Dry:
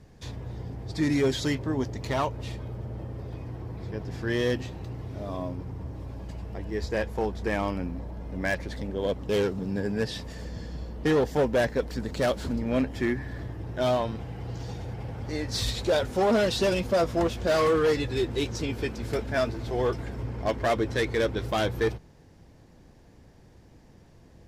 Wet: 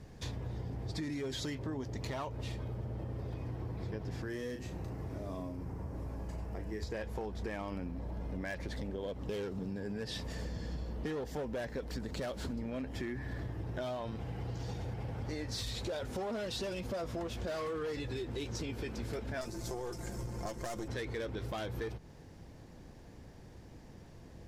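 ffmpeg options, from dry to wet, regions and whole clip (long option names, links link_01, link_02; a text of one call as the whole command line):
ffmpeg -i in.wav -filter_complex "[0:a]asettb=1/sr,asplit=3[link_01][link_02][link_03];[link_01]atrim=end=4.224[link_04];[link_02]atrim=start=4.22:end=6.83,asetpts=PTS-STARTPTS,afade=type=in:duration=0.004:curve=qsin,afade=type=out:start_time=2.606:duration=0.004:curve=qsin,equalizer=frequency=3500:width=1.2:gain=-9.5,asplit=2[link_05][link_06];[link_06]adelay=37,volume=-7.5dB[link_07];[link_05][link_07]amix=inputs=2:normalize=0,atrim=end_sample=115101,acrossover=split=510|1800|5800[link_08][link_09][link_10][link_11];[link_08]acompressor=threshold=-38dB:ratio=3[link_12];[link_09]acompressor=threshold=-50dB:ratio=3[link_13];[link_10]acompressor=threshold=-49dB:ratio=3[link_14];[link_11]acompressor=threshold=-57dB:ratio=3[link_15];[link_12][link_13][link_14][link_15]amix=inputs=4:normalize=0[link_16];[link_03]atrim=start=6.826[link_17];[link_04][link_16]acrossfade=duration=0.004:curve1=hsin:curve2=qsin[link_18];[link_18][link_17]acrossfade=duration=0.004:curve1=qsin:curve2=hsin,asettb=1/sr,asplit=3[link_19][link_20][link_21];[link_19]atrim=end=19.414[link_22];[link_20]atrim=start=19.41:end=20.88,asetpts=PTS-STARTPTS,afade=type=in:duration=0.004:curve=qsin,afade=type=out:start_time=1.466:duration=0.004:curve=qsin,highshelf=frequency=4700:width_type=q:width=1.5:gain=13,aeval=exprs='(tanh(8.91*val(0)+0.75)-tanh(0.75))/8.91':channel_layout=same,aecho=1:1:5.7:0.54,atrim=end_sample=64827[link_23];[link_21]atrim=start=20.876[link_24];[link_22][link_23]acrossfade=duration=0.004:curve1=hsin:curve2=qsin[link_25];[link_25][link_24]acrossfade=duration=0.004:curve1=qsin:curve2=hsin,alimiter=limit=-22.5dB:level=0:latency=1:release=34,acompressor=threshold=-37dB:ratio=6,volume=1dB" out.wav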